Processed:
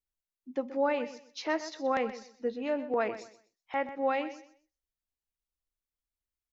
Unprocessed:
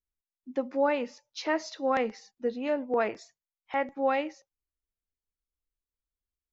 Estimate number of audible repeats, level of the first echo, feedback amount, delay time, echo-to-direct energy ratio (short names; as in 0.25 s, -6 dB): 2, -13.5 dB, 24%, 0.126 s, -13.5 dB